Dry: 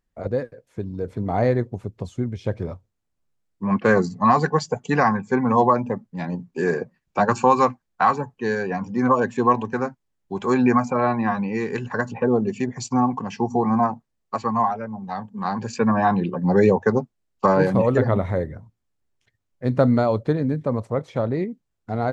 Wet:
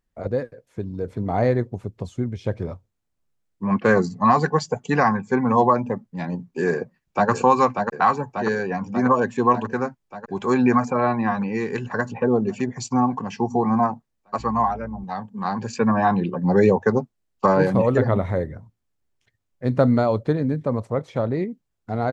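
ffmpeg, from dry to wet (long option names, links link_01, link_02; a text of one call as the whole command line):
ffmpeg -i in.wav -filter_complex "[0:a]asplit=2[link_01][link_02];[link_02]afade=type=in:start_time=6.74:duration=0.01,afade=type=out:start_time=7.3:duration=0.01,aecho=0:1:590|1180|1770|2360|2950|3540|4130|4720|5310|5900|6490|7080:0.562341|0.393639|0.275547|0.192883|0.135018|0.0945127|0.0661589|0.0463112|0.0324179|0.0226925|0.0158848|0.0111193[link_03];[link_01][link_03]amix=inputs=2:normalize=0,asettb=1/sr,asplit=3[link_04][link_05][link_06];[link_04]atrim=end=14.394[link_07];[link_05]atrim=start=14.39:end=15.04,asetpts=PTS-STARTPTS,afade=type=in:duration=0.004:curve=qsin,afade=type=out:start_time=0.646:duration=0.004:curve=qsin,aeval=exprs='val(0)+0.0126*(sin(2*PI*60*n/s)+sin(2*PI*2*60*n/s)/2+sin(2*PI*3*60*n/s)/3+sin(2*PI*4*60*n/s)/4+sin(2*PI*5*60*n/s)/5)':channel_layout=same[link_08];[link_06]atrim=start=15.036[link_09];[link_07][link_08]acrossfade=duration=0.004:curve1=hsin:curve2=qsin[link_10];[link_10][link_09]acrossfade=duration=0.004:curve1=qsin:curve2=hsin" out.wav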